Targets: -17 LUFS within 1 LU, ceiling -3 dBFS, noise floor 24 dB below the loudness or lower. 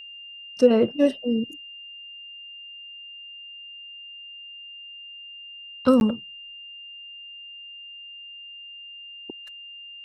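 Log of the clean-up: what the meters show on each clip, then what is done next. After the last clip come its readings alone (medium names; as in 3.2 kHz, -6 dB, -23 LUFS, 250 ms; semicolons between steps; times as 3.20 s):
dropouts 1; longest dropout 11 ms; steady tone 2.8 kHz; tone level -39 dBFS; loudness -22.5 LUFS; peak level -5.5 dBFS; loudness target -17.0 LUFS
-> interpolate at 6.00 s, 11 ms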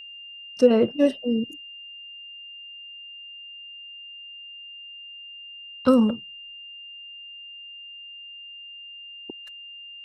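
dropouts 0; steady tone 2.8 kHz; tone level -39 dBFS
-> band-stop 2.8 kHz, Q 30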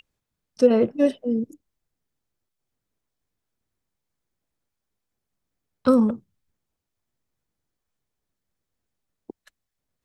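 steady tone not found; loudness -21.5 LUFS; peak level -5.5 dBFS; loudness target -17.0 LUFS
-> trim +4.5 dB; peak limiter -3 dBFS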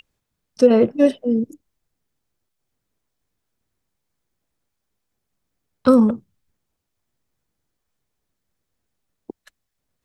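loudness -17.5 LUFS; peak level -3.0 dBFS; noise floor -79 dBFS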